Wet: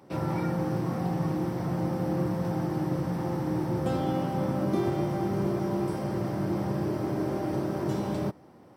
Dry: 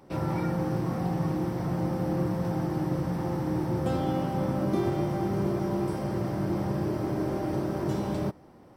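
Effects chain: high-pass 85 Hz

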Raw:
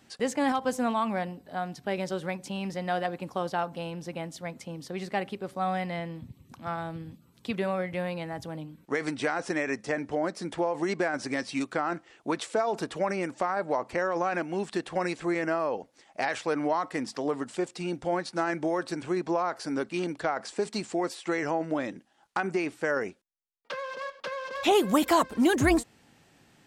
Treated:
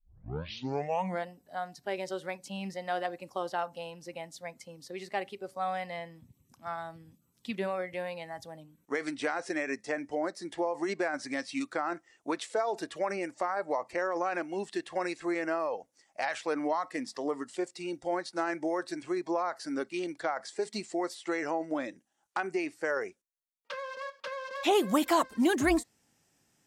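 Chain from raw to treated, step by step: tape start-up on the opening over 1.26 s; spectral noise reduction 10 dB; trim -3 dB

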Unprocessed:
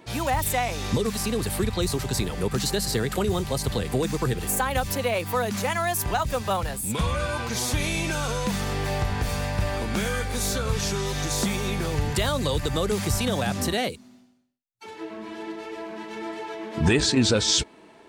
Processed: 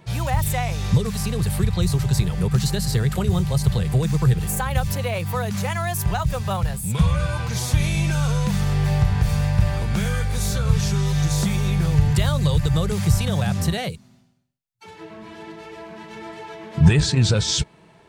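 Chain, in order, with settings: resonant low shelf 200 Hz +7.5 dB, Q 3; trim -1 dB

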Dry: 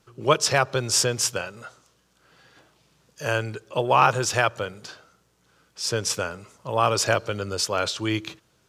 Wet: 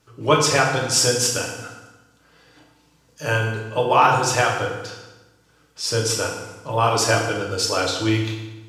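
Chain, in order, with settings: reverb removal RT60 0.55 s; FDN reverb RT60 1.1 s, low-frequency decay 1.25×, high-frequency decay 0.85×, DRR -2 dB

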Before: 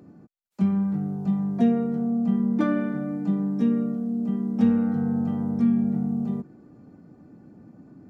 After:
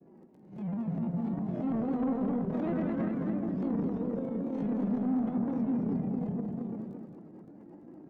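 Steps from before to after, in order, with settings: reverse spectral sustain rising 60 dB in 0.39 s; in parallel at -2 dB: peak limiter -19 dBFS, peak gain reduction 10 dB; on the sum: three-band isolator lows -15 dB, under 180 Hz, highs -13 dB, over 2.1 kHz; hum notches 50/100/150/200 Hz; on a send: delay 361 ms -5.5 dB; on the sum: flange 0.29 Hz, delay 5.6 ms, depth 1.8 ms, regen -32%; peaking EQ 1.3 kHz -11.5 dB 0.38 oct; granulator, spray 12 ms, pitch spread up and down by 3 st; crackle 12 per s -59 dBFS; transient shaper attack -8 dB, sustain +9 dB; saturation -22.5 dBFS, distortion -15 dB; modulated delay 218 ms, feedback 36%, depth 89 cents, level -5 dB; trim -4 dB

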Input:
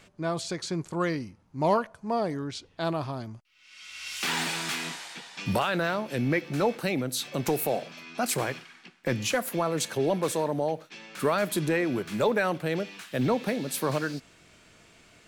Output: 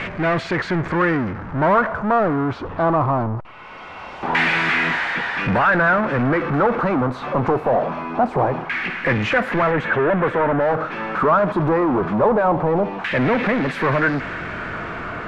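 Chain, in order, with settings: power-law waveshaper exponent 0.35; LFO low-pass saw down 0.23 Hz 840–2100 Hz; 9.71–10.61 s: high-order bell 6.8 kHz -10.5 dB

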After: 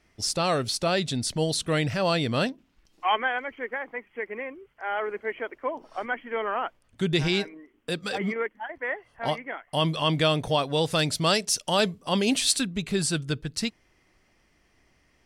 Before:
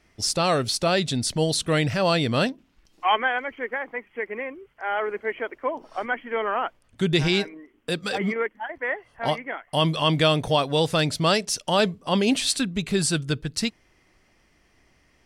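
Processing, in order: 10.91–12.67 s: treble shelf 4.3 kHz +6.5 dB; trim -3 dB

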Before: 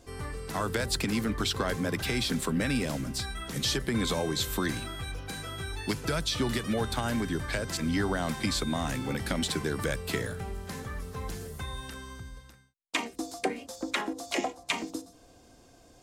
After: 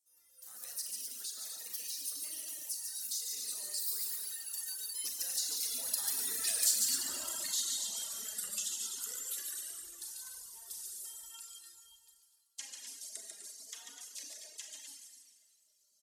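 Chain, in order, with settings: Doppler pass-by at 6.65 s, 49 m/s, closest 13 m; band-stop 2.3 kHz, Q 10; Schroeder reverb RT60 2.1 s, combs from 29 ms, DRR -1.5 dB; in parallel at -11 dB: wavefolder -27 dBFS; on the sum: tone controls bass -13 dB, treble +15 dB; on a send: loudspeakers at several distances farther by 49 m -4 dB, 86 m -7 dB; on the sum: reverb removal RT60 1.6 s; flange 0.41 Hz, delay 3 ms, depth 2 ms, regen +43%; compression 2:1, threshold -54 dBFS, peak gain reduction 17.5 dB; pre-emphasis filter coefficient 0.9; level rider gain up to 14.5 dB

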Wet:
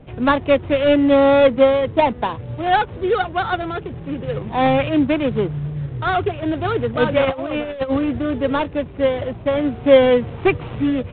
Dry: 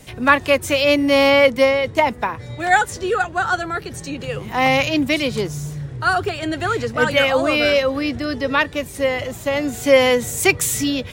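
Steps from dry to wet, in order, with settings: median filter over 25 samples; 7.25–8.09 s: compressor with a negative ratio -24 dBFS, ratio -0.5; trim +3 dB; µ-law 64 kbps 8 kHz

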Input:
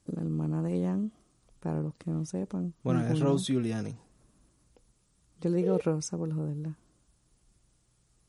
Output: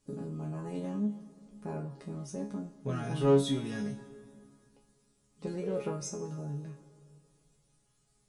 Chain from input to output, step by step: chord resonator C#3 fifth, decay 0.29 s; in parallel at -3.5 dB: saturation -39 dBFS, distortion -4 dB; on the sum: reverberation RT60 2.5 s, pre-delay 73 ms, DRR 15 dB; trim +7 dB

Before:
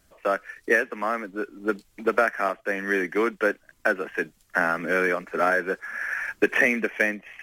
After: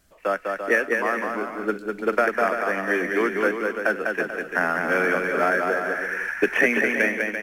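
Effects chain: bouncing-ball echo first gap 200 ms, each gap 0.7×, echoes 5

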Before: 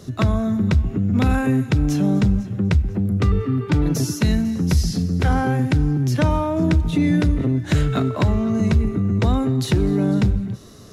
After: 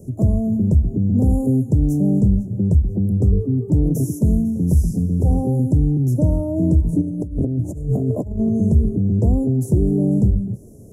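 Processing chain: bass shelf 200 Hz +3 dB; 7.01–8.49 s: compressor with a negative ratio -20 dBFS, ratio -0.5; inverse Chebyshev band-stop 1.6–3.3 kHz, stop band 70 dB

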